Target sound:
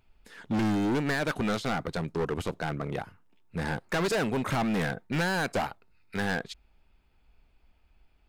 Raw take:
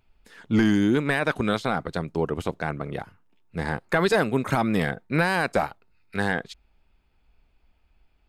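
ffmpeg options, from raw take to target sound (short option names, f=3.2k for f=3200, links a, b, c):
-af "asoftclip=type=hard:threshold=-24.5dB"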